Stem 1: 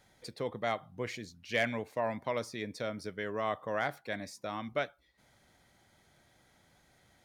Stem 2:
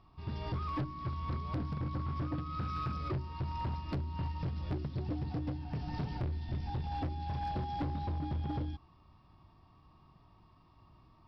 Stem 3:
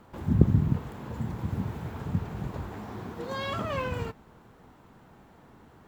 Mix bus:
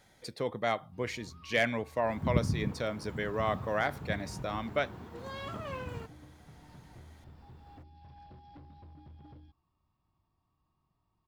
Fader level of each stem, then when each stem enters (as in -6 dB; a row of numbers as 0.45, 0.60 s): +2.5, -17.0, -8.5 dB; 0.00, 0.75, 1.95 s